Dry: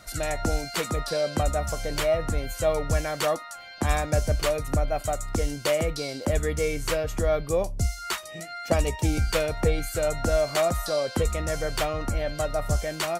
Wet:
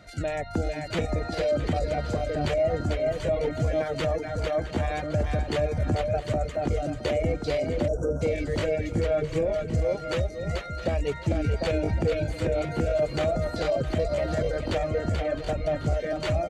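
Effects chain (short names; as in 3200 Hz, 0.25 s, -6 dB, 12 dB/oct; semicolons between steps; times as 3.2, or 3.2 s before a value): tape spacing loss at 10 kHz 23 dB; notch 5400 Hz, Q 17; bouncing-ball echo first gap 0.35 s, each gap 0.7×, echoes 5; reverb removal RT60 0.62 s; tempo 0.8×; limiter -19.5 dBFS, peak gain reduction 7.5 dB; on a send: feedback echo 0.663 s, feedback 32%, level -15 dB; on the sum: spectral delete 7.88–8.21, 1600–5300 Hz; HPF 64 Hz; bell 1100 Hz -9.5 dB 0.71 oct; gain +4 dB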